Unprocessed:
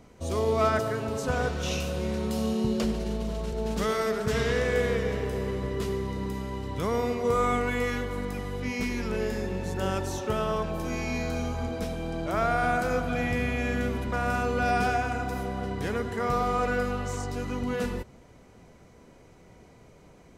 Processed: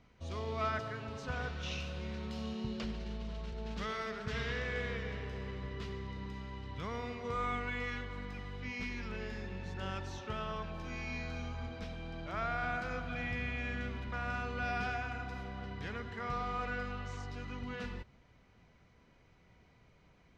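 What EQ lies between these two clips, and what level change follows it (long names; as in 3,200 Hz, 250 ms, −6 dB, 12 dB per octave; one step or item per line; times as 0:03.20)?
high-frequency loss of the air 220 metres
guitar amp tone stack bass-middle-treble 5-5-5
+5.5 dB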